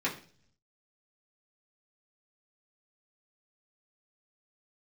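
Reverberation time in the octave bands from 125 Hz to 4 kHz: 1.0, 0.70, 0.50, 0.40, 0.40, 0.55 seconds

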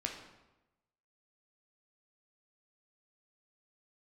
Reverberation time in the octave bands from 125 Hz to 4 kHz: 1.1, 1.0, 1.0, 1.0, 0.85, 0.75 seconds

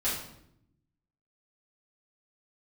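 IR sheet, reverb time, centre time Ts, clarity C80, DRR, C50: 0.75 s, 47 ms, 6.5 dB, −11.0 dB, 3.5 dB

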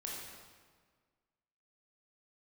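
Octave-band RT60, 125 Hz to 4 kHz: 1.8, 1.8, 1.6, 1.6, 1.4, 1.2 seconds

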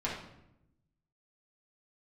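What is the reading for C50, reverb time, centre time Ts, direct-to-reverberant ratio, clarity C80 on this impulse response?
3.0 dB, 0.85 s, 42 ms, −6.5 dB, 7.0 dB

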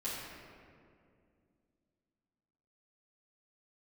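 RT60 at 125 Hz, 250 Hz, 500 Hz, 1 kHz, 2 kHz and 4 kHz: 3.0, 3.3, 2.6, 2.0, 1.8, 1.2 seconds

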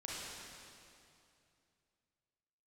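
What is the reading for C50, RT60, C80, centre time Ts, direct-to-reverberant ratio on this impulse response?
−4.0 dB, 2.6 s, −1.5 dB, 173 ms, −6.0 dB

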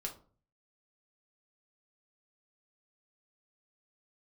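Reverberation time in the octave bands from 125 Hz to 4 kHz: 0.70, 0.55, 0.45, 0.40, 0.30, 0.25 seconds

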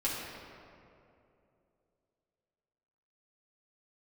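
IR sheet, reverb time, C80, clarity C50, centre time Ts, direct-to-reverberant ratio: 2.7 s, 1.5 dB, 0.0 dB, 115 ms, −7.5 dB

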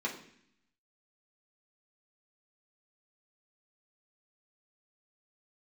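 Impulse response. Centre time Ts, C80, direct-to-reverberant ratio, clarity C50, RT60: 21 ms, 12.0 dB, −3.5 dB, 8.5 dB, 0.65 s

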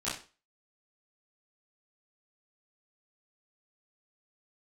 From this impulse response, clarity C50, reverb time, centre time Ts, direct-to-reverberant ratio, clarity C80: 4.5 dB, 0.35 s, 40 ms, −11.5 dB, 10.5 dB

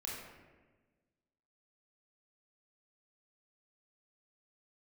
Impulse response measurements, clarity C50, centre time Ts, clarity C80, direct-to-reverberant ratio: 0.5 dB, 75 ms, 3.0 dB, −4.5 dB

